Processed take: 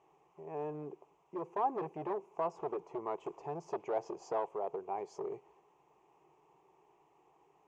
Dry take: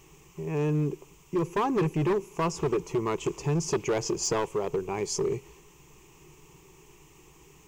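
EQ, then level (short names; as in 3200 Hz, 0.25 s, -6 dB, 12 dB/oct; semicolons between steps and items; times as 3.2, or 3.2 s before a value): band-pass 720 Hz, Q 3.5; +1.0 dB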